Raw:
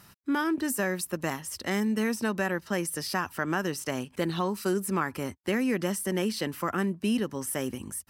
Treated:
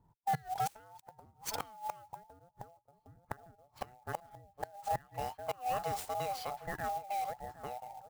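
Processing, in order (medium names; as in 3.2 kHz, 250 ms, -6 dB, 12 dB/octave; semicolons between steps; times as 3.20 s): every band turned upside down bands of 1 kHz; Doppler pass-by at 2.57 s, 13 m/s, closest 3.3 m; bass shelf 220 Hz +8 dB; echo from a far wall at 130 m, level -14 dB; compression 16:1, threshold -40 dBFS, peak gain reduction 18 dB; inverted gate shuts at -37 dBFS, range -25 dB; ten-band graphic EQ 125 Hz +11 dB, 1 kHz +9 dB, 4 kHz +5 dB, 8 kHz +7 dB; level-controlled noise filter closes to 330 Hz, open at -41.5 dBFS; sampling jitter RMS 0.024 ms; trim +8.5 dB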